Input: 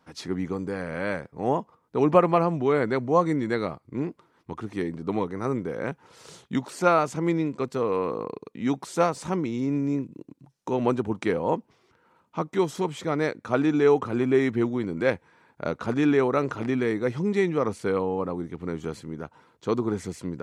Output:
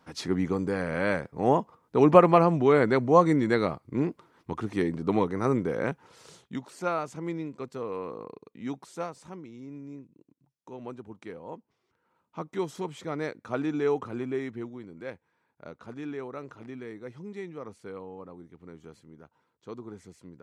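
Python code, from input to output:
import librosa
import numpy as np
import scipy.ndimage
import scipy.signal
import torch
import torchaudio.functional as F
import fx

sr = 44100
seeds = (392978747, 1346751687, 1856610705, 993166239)

y = fx.gain(x, sr, db=fx.line((5.79, 2.0), (6.6, -9.0), (8.69, -9.0), (9.43, -16.5), (11.47, -16.5), (12.52, -7.0), (14.02, -7.0), (14.88, -15.5)))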